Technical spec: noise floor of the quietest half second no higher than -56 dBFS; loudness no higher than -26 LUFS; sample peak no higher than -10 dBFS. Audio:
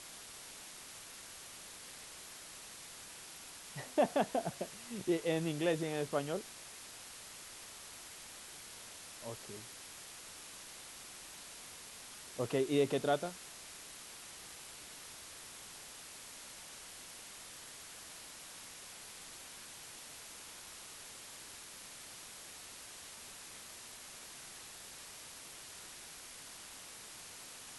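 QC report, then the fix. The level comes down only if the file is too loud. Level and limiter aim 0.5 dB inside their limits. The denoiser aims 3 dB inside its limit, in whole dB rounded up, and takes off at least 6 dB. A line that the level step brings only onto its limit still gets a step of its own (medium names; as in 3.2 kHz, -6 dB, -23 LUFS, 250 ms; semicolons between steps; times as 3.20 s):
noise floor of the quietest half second -51 dBFS: fail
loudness -42.5 LUFS: pass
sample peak -19.0 dBFS: pass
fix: noise reduction 8 dB, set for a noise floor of -51 dBFS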